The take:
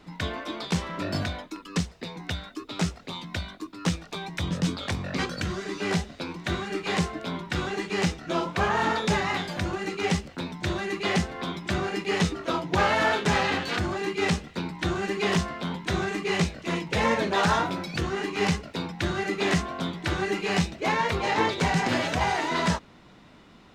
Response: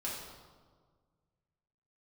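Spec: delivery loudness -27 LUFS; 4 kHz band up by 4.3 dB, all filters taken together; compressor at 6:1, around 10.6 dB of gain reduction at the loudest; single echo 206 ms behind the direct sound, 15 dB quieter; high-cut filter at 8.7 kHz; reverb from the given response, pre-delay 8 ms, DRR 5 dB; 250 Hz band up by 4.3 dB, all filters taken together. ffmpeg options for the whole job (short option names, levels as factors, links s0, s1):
-filter_complex "[0:a]lowpass=8700,equalizer=f=250:t=o:g=6.5,equalizer=f=4000:t=o:g=5.5,acompressor=threshold=0.0398:ratio=6,aecho=1:1:206:0.178,asplit=2[s0][s1];[1:a]atrim=start_sample=2205,adelay=8[s2];[s1][s2]afir=irnorm=-1:irlink=0,volume=0.422[s3];[s0][s3]amix=inputs=2:normalize=0,volume=1.5"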